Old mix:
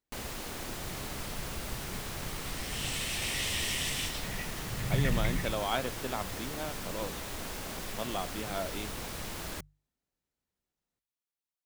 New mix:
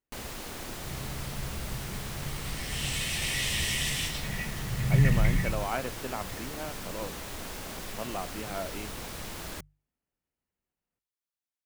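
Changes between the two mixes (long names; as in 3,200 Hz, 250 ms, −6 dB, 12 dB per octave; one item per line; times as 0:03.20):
speech: add linear-phase brick-wall low-pass 3,100 Hz
second sound: send +11.0 dB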